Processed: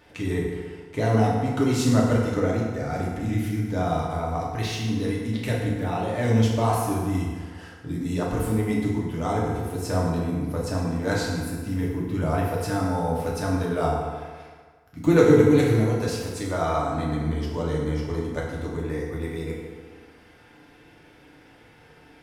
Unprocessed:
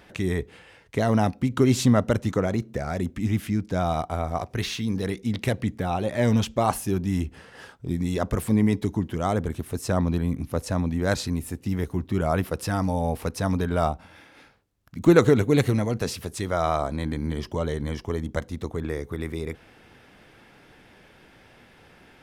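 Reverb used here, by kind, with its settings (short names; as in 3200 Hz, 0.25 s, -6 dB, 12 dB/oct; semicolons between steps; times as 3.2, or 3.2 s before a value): FDN reverb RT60 1.6 s, low-frequency decay 0.85×, high-frequency decay 0.65×, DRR -5 dB; gain -6 dB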